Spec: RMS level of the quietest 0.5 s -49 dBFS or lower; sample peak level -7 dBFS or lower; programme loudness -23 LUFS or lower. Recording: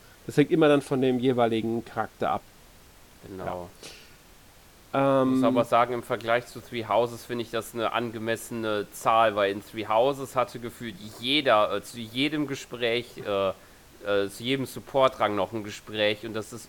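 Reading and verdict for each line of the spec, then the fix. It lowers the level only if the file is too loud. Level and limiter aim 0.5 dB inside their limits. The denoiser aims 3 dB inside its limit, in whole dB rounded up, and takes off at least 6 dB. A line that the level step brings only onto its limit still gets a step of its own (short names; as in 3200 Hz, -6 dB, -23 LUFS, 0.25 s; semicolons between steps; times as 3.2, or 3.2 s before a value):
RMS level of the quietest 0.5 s -53 dBFS: OK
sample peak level -8.0 dBFS: OK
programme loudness -26.5 LUFS: OK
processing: none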